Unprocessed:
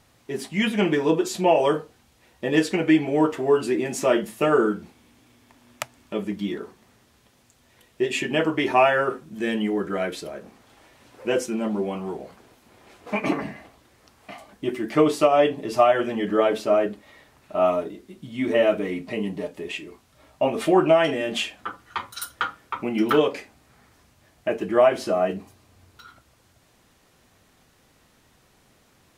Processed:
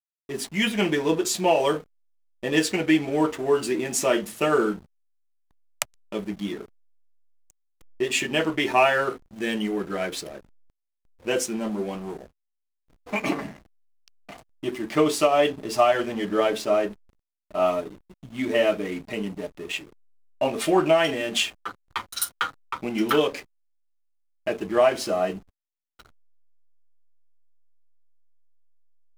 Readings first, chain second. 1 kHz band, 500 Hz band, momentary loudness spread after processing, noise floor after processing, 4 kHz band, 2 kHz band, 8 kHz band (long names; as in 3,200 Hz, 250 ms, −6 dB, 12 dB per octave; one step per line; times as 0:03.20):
−1.5 dB, −2.0 dB, 13 LU, −79 dBFS, +3.0 dB, +0.5 dB, +6.5 dB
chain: high-shelf EQ 3,000 Hz +11.5 dB
slack as between gear wheels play −31.5 dBFS
level −2.5 dB